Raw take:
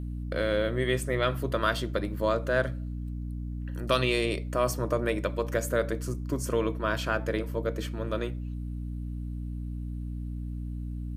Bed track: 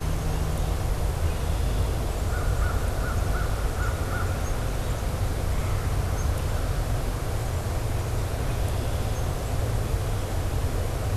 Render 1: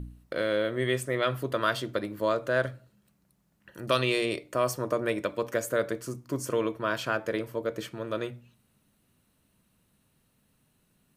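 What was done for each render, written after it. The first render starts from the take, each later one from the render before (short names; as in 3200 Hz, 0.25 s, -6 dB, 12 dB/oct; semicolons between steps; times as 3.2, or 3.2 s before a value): de-hum 60 Hz, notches 5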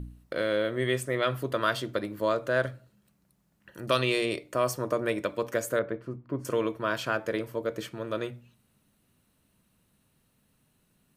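5.79–6.45 air absorption 490 m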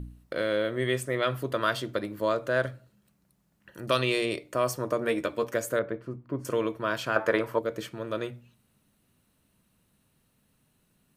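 5–5.45 doubler 13 ms -5.5 dB; 7.16–7.59 bell 1100 Hz +13 dB 2.1 oct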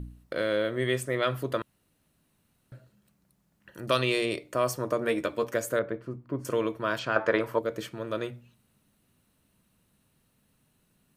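1.62–2.72 room tone; 6.99–7.4 LPF 5800 Hz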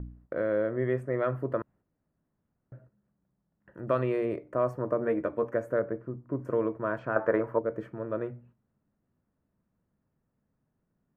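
gate -56 dBFS, range -7 dB; EQ curve 650 Hz 0 dB, 1800 Hz -6 dB, 3600 Hz -29 dB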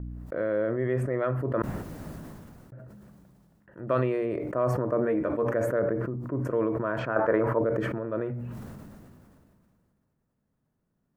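sustainer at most 24 dB/s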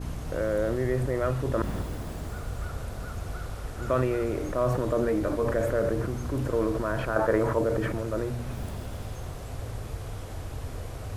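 add bed track -9.5 dB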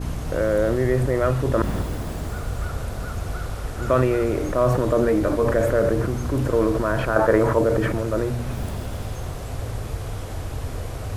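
gain +6.5 dB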